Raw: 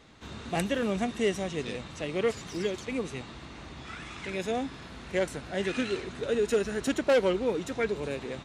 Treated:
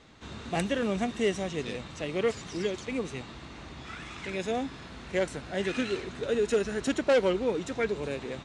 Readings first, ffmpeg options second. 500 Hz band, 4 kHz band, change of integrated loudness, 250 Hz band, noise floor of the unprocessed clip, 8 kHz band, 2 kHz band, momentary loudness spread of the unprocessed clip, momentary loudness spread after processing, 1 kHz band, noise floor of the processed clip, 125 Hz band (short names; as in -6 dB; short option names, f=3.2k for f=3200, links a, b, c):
0.0 dB, 0.0 dB, 0.0 dB, 0.0 dB, -45 dBFS, -0.5 dB, 0.0 dB, 15 LU, 15 LU, 0.0 dB, -45 dBFS, 0.0 dB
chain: -af "lowpass=f=9.4k:w=0.5412,lowpass=f=9.4k:w=1.3066"